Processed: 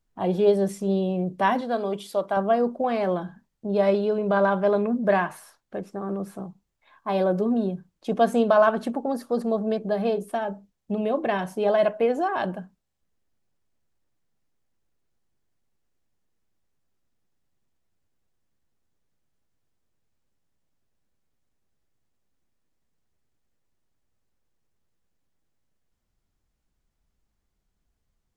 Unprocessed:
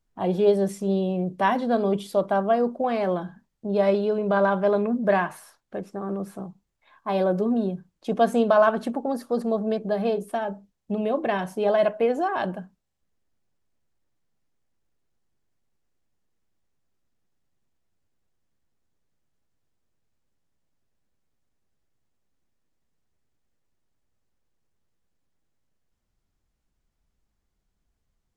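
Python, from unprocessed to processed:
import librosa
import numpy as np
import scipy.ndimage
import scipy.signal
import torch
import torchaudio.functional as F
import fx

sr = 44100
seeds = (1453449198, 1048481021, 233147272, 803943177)

y = fx.low_shelf(x, sr, hz=320.0, db=-11.0, at=(1.61, 2.37))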